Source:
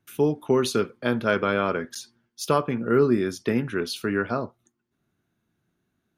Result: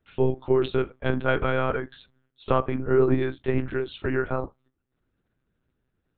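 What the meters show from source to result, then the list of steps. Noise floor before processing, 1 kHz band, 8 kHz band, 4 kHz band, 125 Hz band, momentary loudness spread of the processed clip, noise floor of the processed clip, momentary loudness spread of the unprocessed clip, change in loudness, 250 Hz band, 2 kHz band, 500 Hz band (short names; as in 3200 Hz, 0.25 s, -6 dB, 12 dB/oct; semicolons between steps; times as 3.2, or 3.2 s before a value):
-78 dBFS, -1.5 dB, under -40 dB, -6.5 dB, +2.5 dB, 8 LU, -78 dBFS, 9 LU, -1.0 dB, -3.0 dB, -2.0 dB, -0.5 dB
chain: high shelf 2500 Hz -3.5 dB; monotone LPC vocoder at 8 kHz 130 Hz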